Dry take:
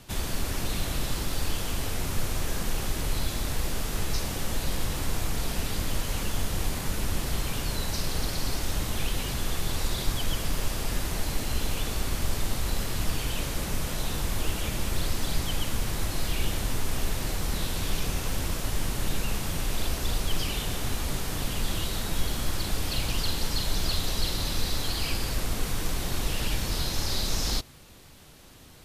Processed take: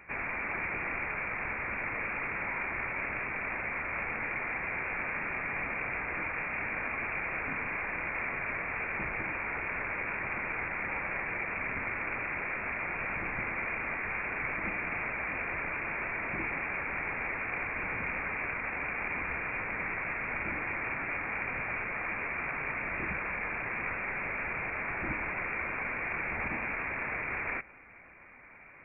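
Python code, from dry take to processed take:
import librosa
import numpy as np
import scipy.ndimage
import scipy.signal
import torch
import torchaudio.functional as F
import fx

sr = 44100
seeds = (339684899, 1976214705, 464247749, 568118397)

y = scipy.signal.sosfilt(scipy.signal.butter(2, 260.0, 'highpass', fs=sr, output='sos'), x)
y = fx.freq_invert(y, sr, carrier_hz=2600)
y = F.gain(torch.from_numpy(y), 3.5).numpy()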